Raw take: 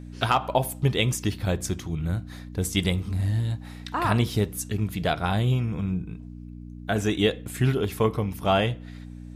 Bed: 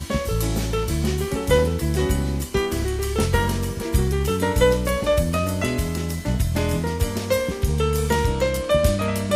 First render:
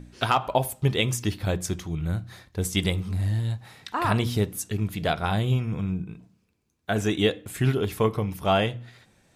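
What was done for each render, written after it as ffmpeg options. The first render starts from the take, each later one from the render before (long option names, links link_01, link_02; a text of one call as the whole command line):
ffmpeg -i in.wav -af "bandreject=frequency=60:width_type=h:width=4,bandreject=frequency=120:width_type=h:width=4,bandreject=frequency=180:width_type=h:width=4,bandreject=frequency=240:width_type=h:width=4,bandreject=frequency=300:width_type=h:width=4" out.wav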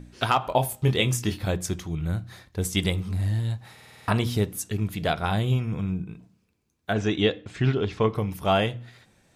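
ffmpeg -i in.wav -filter_complex "[0:a]asettb=1/sr,asplit=3[link_01][link_02][link_03];[link_01]atrim=end=0.464[link_04];[link_02]atrim=start=0.46:end=1.49,asetpts=PTS-STARTPTS,afade=type=in:duration=0.004:curve=qsin,afade=type=out:start_time=1.026:duration=0.004:curve=qsin,asplit=2[link_05][link_06];[link_06]adelay=24,volume=-7dB[link_07];[link_05][link_07]amix=inputs=2:normalize=0,atrim=end_sample=45423[link_08];[link_03]atrim=start=1.486[link_09];[link_04][link_08]acrossfade=duration=0.004:curve1=hsin:curve2=qsin[link_10];[link_10][link_09]acrossfade=duration=0.004:curve1=qsin:curve2=hsin,asplit=3[link_11][link_12][link_13];[link_11]afade=type=out:start_time=6.92:duration=0.02[link_14];[link_12]lowpass=frequency=5700:width=0.5412,lowpass=frequency=5700:width=1.3066,afade=type=in:start_time=6.92:duration=0.02,afade=type=out:start_time=8.14:duration=0.02[link_15];[link_13]afade=type=in:start_time=8.14:duration=0.02[link_16];[link_14][link_15][link_16]amix=inputs=3:normalize=0,asplit=8[link_17][link_18][link_19][link_20][link_21][link_22][link_23][link_24];[link_17]atrim=end=3.782[link_25];[link_18]atrim=start=3.728:end=3.782[link_26];[link_19]atrim=start=3.728:end=3.782[link_27];[link_20]atrim=start=3.728:end=3.782[link_28];[link_21]atrim=start=3.728:end=3.782[link_29];[link_22]atrim=start=3.728:end=3.782[link_30];[link_23]atrim=start=3.728:end=3.782[link_31];[link_24]atrim=start=4.078[link_32];[link_25][link_26]acrossfade=duration=0.004:curve1=hsin:curve2=hsin[link_33];[link_33][link_27]acrossfade=duration=0.004:curve1=hsin:curve2=hsin[link_34];[link_34][link_28]acrossfade=duration=0.004:curve1=hsin:curve2=hsin[link_35];[link_35][link_29]acrossfade=duration=0.004:curve1=hsin:curve2=hsin[link_36];[link_36][link_30]acrossfade=duration=0.004:curve1=hsin:curve2=hsin[link_37];[link_37][link_31]acrossfade=duration=0.004:curve1=hsin:curve2=hsin[link_38];[link_38][link_32]acrossfade=duration=0.004:curve1=hsin:curve2=hsin" out.wav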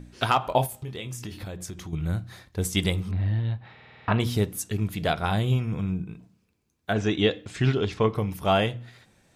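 ffmpeg -i in.wav -filter_complex "[0:a]asettb=1/sr,asplit=3[link_01][link_02][link_03];[link_01]atrim=end=0.664[link_04];[link_02]atrim=start=0.66:end=1.93,asetpts=PTS-STARTPTS,afade=type=in:duration=0.004:curve=qsin,afade=type=out:start_time=1.266:duration=0.004:curve=qsin,acompressor=threshold=-33dB:ratio=5:attack=3.2:release=140:knee=1:detection=peak[link_05];[link_03]atrim=start=1.926[link_06];[link_04][link_05]acrossfade=duration=0.004:curve1=hsin:curve2=qsin[link_07];[link_07][link_06]acrossfade=duration=0.004:curve1=qsin:curve2=hsin,asettb=1/sr,asplit=3[link_08][link_09][link_10];[link_08]atrim=end=3.114[link_11];[link_09]atrim=start=3.11:end=4.2,asetpts=PTS-STARTPTS,afade=type=in:duration=0.004:curve=qsin,afade=type=out:start_time=1.086:duration=0.004:curve=qsin,lowpass=frequency=3400:width=0.5412,lowpass=frequency=3400:width=1.3066[link_12];[link_10]atrim=start=4.196[link_13];[link_11][link_12]acrossfade=duration=0.004:curve1=hsin:curve2=qsin[link_14];[link_14][link_13]acrossfade=duration=0.004:curve1=qsin:curve2=hsin,asettb=1/sr,asplit=3[link_15][link_16][link_17];[link_15]atrim=end=7.314[link_18];[link_16]atrim=start=7.31:end=7.94,asetpts=PTS-STARTPTS,afade=type=in:duration=0.004:curve=qsin,afade=type=out:start_time=0.626:duration=0.004:curve=qsin,highshelf=frequency=4800:gain=9.5[link_19];[link_17]atrim=start=7.936[link_20];[link_18][link_19]acrossfade=duration=0.004:curve1=hsin:curve2=qsin[link_21];[link_21][link_20]acrossfade=duration=0.004:curve1=qsin:curve2=hsin" out.wav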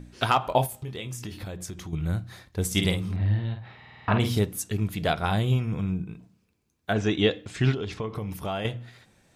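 ffmpeg -i in.wav -filter_complex "[0:a]asettb=1/sr,asplit=3[link_01][link_02][link_03];[link_01]atrim=end=2.664[link_04];[link_02]atrim=start=2.66:end=4.39,asetpts=PTS-STARTPTS,afade=type=in:duration=0.004:curve=qsin,afade=type=out:start_time=1.726:duration=0.004:curve=qsin,asplit=2[link_05][link_06];[link_06]adelay=49,volume=-6.5dB[link_07];[link_05][link_07]amix=inputs=2:normalize=0,atrim=end_sample=76293[link_08];[link_03]atrim=start=4.386[link_09];[link_04][link_08]acrossfade=duration=0.004:curve1=hsin:curve2=qsin[link_10];[link_10][link_09]acrossfade=duration=0.004:curve1=qsin:curve2=hsin,asettb=1/sr,asplit=3[link_11][link_12][link_13];[link_11]atrim=end=7.744[link_14];[link_12]atrim=start=7.74:end=8.65,asetpts=PTS-STARTPTS,afade=type=in:duration=0.004:curve=qsin,afade=type=out:start_time=0.906:duration=0.004:curve=qsin,acompressor=threshold=-27dB:ratio=6:attack=3.2:release=140:knee=1:detection=peak[link_15];[link_13]atrim=start=8.646[link_16];[link_14][link_15]acrossfade=duration=0.004:curve1=hsin:curve2=qsin[link_17];[link_17][link_16]acrossfade=duration=0.004:curve1=qsin:curve2=hsin" out.wav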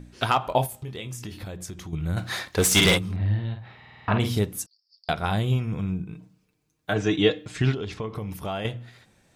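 ffmpeg -i in.wav -filter_complex "[0:a]asplit=3[link_01][link_02][link_03];[link_01]afade=type=out:start_time=2.16:duration=0.02[link_04];[link_02]asplit=2[link_05][link_06];[link_06]highpass=frequency=720:poles=1,volume=24dB,asoftclip=type=tanh:threshold=-9dB[link_07];[link_05][link_07]amix=inputs=2:normalize=0,lowpass=frequency=7300:poles=1,volume=-6dB,afade=type=in:start_time=2.16:duration=0.02,afade=type=out:start_time=2.97:duration=0.02[link_08];[link_03]afade=type=in:start_time=2.97:duration=0.02[link_09];[link_04][link_08][link_09]amix=inputs=3:normalize=0,asettb=1/sr,asplit=3[link_10][link_11][link_12];[link_10]atrim=end=4.664[link_13];[link_11]atrim=start=4.66:end=5.09,asetpts=PTS-STARTPTS,afade=type=in:duration=0.004:curve=qsin,afade=type=out:start_time=0.426:duration=0.004:curve=qsin,asuperpass=centerf=4900:order=8:qfactor=5.2[link_14];[link_12]atrim=start=5.086[link_15];[link_13][link_14]acrossfade=duration=0.004:curve1=hsin:curve2=qsin[link_16];[link_16][link_15]acrossfade=duration=0.004:curve1=qsin:curve2=hsin,asettb=1/sr,asplit=3[link_17][link_18][link_19];[link_17]atrim=end=6.124[link_20];[link_18]atrim=start=6.12:end=7.62,asetpts=PTS-STARTPTS,afade=type=in:duration=0.004:curve=qsin,afade=type=out:start_time=1.496:duration=0.004:curve=qsin,aecho=1:1:6.5:0.65,atrim=end_sample=66150[link_21];[link_19]atrim=start=7.616[link_22];[link_20][link_21]acrossfade=duration=0.004:curve1=hsin:curve2=qsin[link_23];[link_23][link_22]acrossfade=duration=0.004:curve1=qsin:curve2=hsin" out.wav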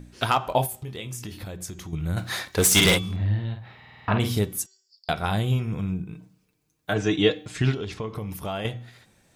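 ffmpeg -i in.wav -af "highshelf=frequency=8600:gain=6,bandreject=frequency=381.2:width_type=h:width=4,bandreject=frequency=762.4:width_type=h:width=4,bandreject=frequency=1143.6:width_type=h:width=4,bandreject=frequency=1524.8:width_type=h:width=4,bandreject=frequency=1906:width_type=h:width=4,bandreject=frequency=2287.2:width_type=h:width=4,bandreject=frequency=2668.4:width_type=h:width=4,bandreject=frequency=3049.6:width_type=h:width=4,bandreject=frequency=3430.8:width_type=h:width=4,bandreject=frequency=3812:width_type=h:width=4,bandreject=frequency=4193.2:width_type=h:width=4,bandreject=frequency=4574.4:width_type=h:width=4,bandreject=frequency=4955.6:width_type=h:width=4,bandreject=frequency=5336.8:width_type=h:width=4,bandreject=frequency=5718:width_type=h:width=4,bandreject=frequency=6099.2:width_type=h:width=4,bandreject=frequency=6480.4:width_type=h:width=4,bandreject=frequency=6861.6:width_type=h:width=4,bandreject=frequency=7242.8:width_type=h:width=4,bandreject=frequency=7624:width_type=h:width=4" out.wav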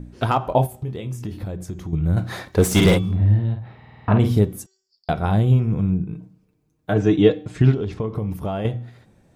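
ffmpeg -i in.wav -af "tiltshelf=frequency=1200:gain=8" out.wav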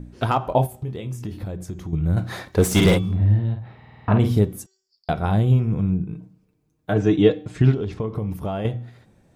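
ffmpeg -i in.wav -af "volume=-1dB" out.wav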